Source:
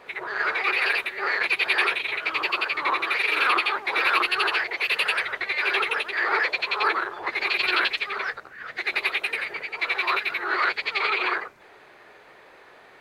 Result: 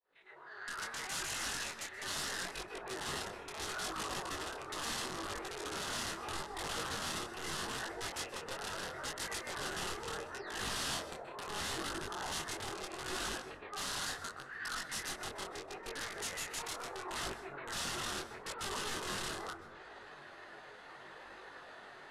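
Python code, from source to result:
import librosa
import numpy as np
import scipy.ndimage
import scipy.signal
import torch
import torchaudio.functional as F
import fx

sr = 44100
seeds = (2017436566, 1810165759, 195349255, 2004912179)

y = fx.fade_in_head(x, sr, length_s=2.08)
y = fx.spec_paint(y, sr, seeds[0], shape='fall', start_s=6.08, length_s=0.38, low_hz=600.0, high_hz=6200.0, level_db=-25.0)
y = fx.env_lowpass_down(y, sr, base_hz=670.0, full_db=-22.5)
y = fx.stretch_grains(y, sr, factor=1.7, grain_ms=104.0)
y = fx.rider(y, sr, range_db=3, speed_s=2.0)
y = (np.mod(10.0 ** (30.5 / 20.0) * y + 1.0, 2.0) - 1.0) / 10.0 ** (30.5 / 20.0)
y = scipy.signal.sosfilt(scipy.signal.butter(4, 11000.0, 'lowpass', fs=sr, output='sos'), y)
y = fx.peak_eq(y, sr, hz=2300.0, db=-11.5, octaves=0.22)
y = fx.rev_plate(y, sr, seeds[1], rt60_s=1.3, hf_ratio=0.25, predelay_ms=115, drr_db=11.0)
y = fx.dynamic_eq(y, sr, hz=500.0, q=0.86, threshold_db=-55.0, ratio=4.0, max_db=-4)
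y = fx.detune_double(y, sr, cents=26)
y = y * 10.0 ** (2.5 / 20.0)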